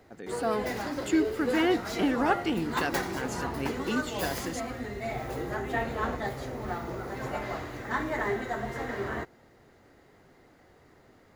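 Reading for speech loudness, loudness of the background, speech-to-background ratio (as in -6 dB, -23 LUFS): -31.0 LUFS, -33.5 LUFS, 2.5 dB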